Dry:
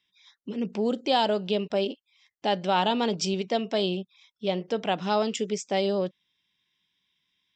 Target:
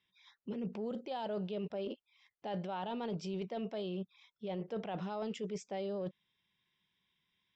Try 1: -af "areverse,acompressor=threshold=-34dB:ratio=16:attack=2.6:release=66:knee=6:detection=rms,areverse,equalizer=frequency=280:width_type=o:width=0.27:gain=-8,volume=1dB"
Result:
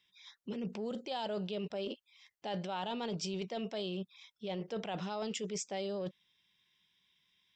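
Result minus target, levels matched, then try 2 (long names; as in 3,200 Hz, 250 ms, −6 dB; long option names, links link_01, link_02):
2,000 Hz band +3.5 dB
-af "areverse,acompressor=threshold=-34dB:ratio=16:attack=2.6:release=66:knee=6:detection=rms,areverse,lowpass=frequency=1500:poles=1,equalizer=frequency=280:width_type=o:width=0.27:gain=-8,volume=1dB"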